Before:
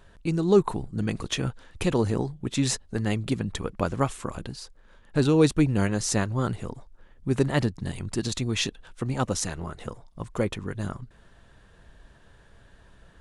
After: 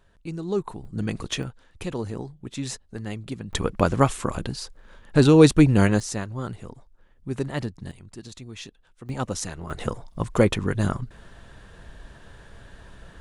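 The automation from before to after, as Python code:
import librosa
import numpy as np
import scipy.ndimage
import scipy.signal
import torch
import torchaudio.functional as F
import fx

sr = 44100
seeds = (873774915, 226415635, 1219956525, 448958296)

y = fx.gain(x, sr, db=fx.steps((0.0, -7.0), (0.85, 0.0), (1.43, -6.5), (3.53, 6.0), (6.0, -5.0), (7.91, -12.5), (9.09, -2.0), (9.7, 8.0)))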